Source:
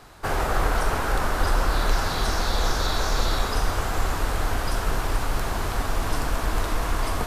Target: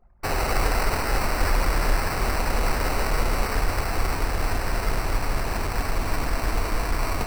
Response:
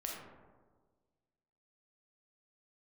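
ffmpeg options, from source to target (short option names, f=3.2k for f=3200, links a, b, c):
-af "acrusher=samples=13:mix=1:aa=0.000001,anlmdn=0.398"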